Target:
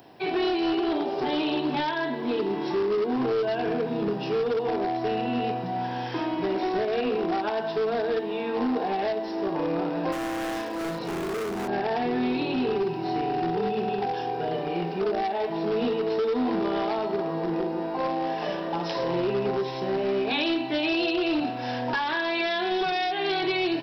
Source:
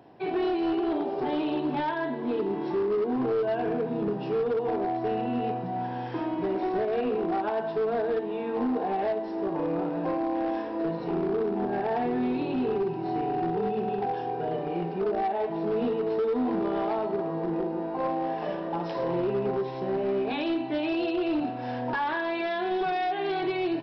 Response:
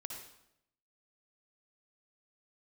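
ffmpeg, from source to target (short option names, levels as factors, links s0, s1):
-filter_complex "[0:a]asettb=1/sr,asplit=3[s0][s1][s2];[s0]atrim=end=10.124[s3];[s1]atrim=start=10.12:end=11.68,asetpts=PTS-STARTPTS,afade=t=in:d=0.004:c=qsin,afade=t=out:st=1.556:d=0.004:c=qsin,volume=29.9,asoftclip=hard,volume=0.0335[s4];[s2]atrim=start=11.676[s5];[s3][s4]acrossfade=d=0.004:c1=hsin:c2=qsin[s6];[s6][s5]acrossfade=d=0.004:c1=qsin:c2=hsin,acrossover=split=460|3000[s7][s8][s9];[s8]acompressor=threshold=0.0355:ratio=6[s10];[s7][s10][s9]amix=inputs=3:normalize=0,crystalizer=i=5.5:c=0,volume=1.12"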